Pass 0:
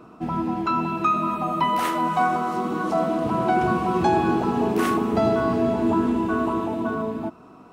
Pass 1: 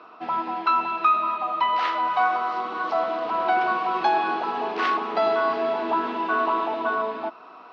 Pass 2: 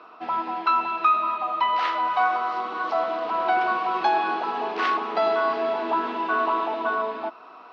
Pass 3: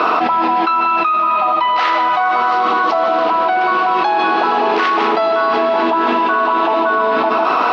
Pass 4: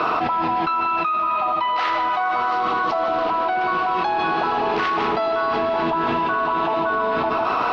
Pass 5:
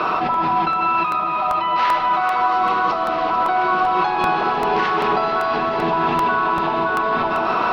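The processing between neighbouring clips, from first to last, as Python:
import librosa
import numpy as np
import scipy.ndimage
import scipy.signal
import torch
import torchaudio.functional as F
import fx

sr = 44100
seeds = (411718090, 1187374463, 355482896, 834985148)

y1 = scipy.signal.sosfilt(scipy.signal.butter(2, 750.0, 'highpass', fs=sr, output='sos'), x)
y1 = fx.rider(y1, sr, range_db=5, speed_s=2.0)
y1 = scipy.signal.sosfilt(scipy.signal.butter(6, 4800.0, 'lowpass', fs=sr, output='sos'), y1)
y1 = y1 * librosa.db_to_amplitude(3.0)
y2 = fx.low_shelf(y1, sr, hz=170.0, db=-7.0)
y3 = y2 + 10.0 ** (-10.0 / 20.0) * np.pad(y2, (int(152 * sr / 1000.0), 0))[:len(y2)]
y3 = fx.env_flatten(y3, sr, amount_pct=100)
y3 = y3 * librosa.db_to_amplitude(1.5)
y4 = fx.octave_divider(y3, sr, octaves=1, level_db=-6.0)
y4 = y4 * librosa.db_to_amplitude(-6.5)
y5 = fx.echo_alternate(y4, sr, ms=221, hz=990.0, feedback_pct=89, wet_db=-9.5)
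y5 = fx.room_shoebox(y5, sr, seeds[0], volume_m3=2000.0, walls='furnished', distance_m=1.1)
y5 = fx.buffer_crackle(y5, sr, first_s=0.34, period_s=0.39, block=64, kind='repeat')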